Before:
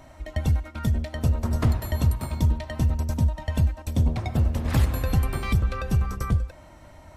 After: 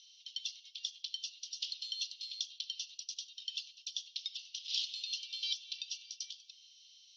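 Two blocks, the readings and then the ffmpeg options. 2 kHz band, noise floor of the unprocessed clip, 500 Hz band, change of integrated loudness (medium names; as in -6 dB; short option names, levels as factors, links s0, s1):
-15.5 dB, -48 dBFS, under -40 dB, -14.5 dB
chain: -af "asuperpass=centerf=4200:order=12:qfactor=1.4,volume=2.37"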